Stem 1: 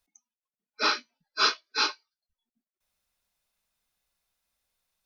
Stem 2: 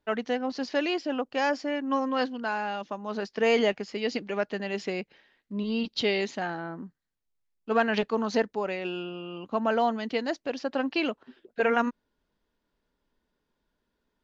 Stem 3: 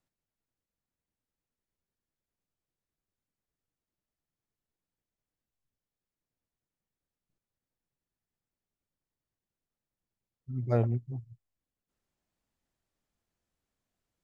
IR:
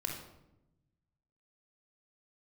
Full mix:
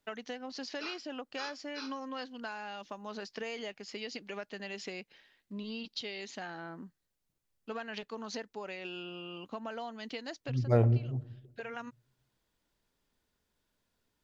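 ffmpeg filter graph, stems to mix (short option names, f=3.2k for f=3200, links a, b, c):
-filter_complex "[0:a]acompressor=threshold=-28dB:ratio=3,volume=-15dB,asplit=2[a][b];[b]volume=-24dB[c];[1:a]highshelf=f=2.2k:g=10.5,acompressor=threshold=-31dB:ratio=6,volume=-6.5dB[d];[2:a]volume=0.5dB,asplit=3[e][f][g];[f]volume=-13.5dB[h];[g]apad=whole_len=627683[i];[d][i]sidechaincompress=threshold=-40dB:ratio=4:attack=16:release=677[j];[3:a]atrim=start_sample=2205[k];[c][h]amix=inputs=2:normalize=0[l];[l][k]afir=irnorm=-1:irlink=0[m];[a][j][e][m]amix=inputs=4:normalize=0"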